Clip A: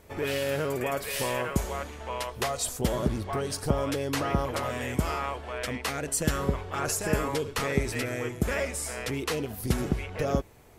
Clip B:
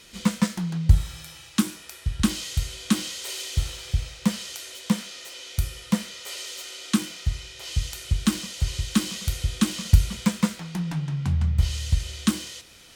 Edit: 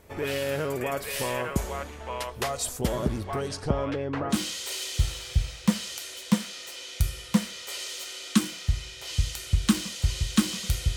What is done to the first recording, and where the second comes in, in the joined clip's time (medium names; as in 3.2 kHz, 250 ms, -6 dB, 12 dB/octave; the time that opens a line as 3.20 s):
clip A
3.48–4.37 s: low-pass 7.8 kHz -> 1 kHz
4.33 s: go over to clip B from 2.91 s, crossfade 0.08 s